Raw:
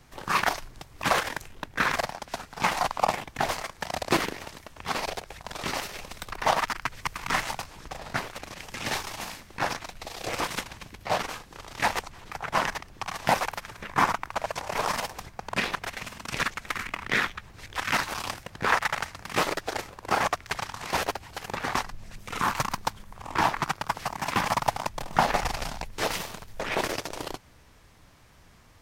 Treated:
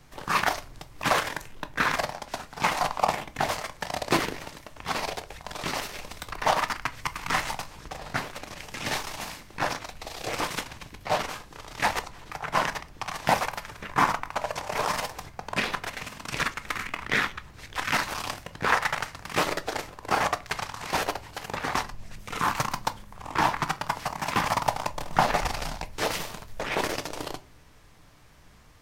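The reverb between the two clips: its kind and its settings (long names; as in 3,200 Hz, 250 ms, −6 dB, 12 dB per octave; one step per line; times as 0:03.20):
rectangular room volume 210 cubic metres, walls furnished, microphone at 0.43 metres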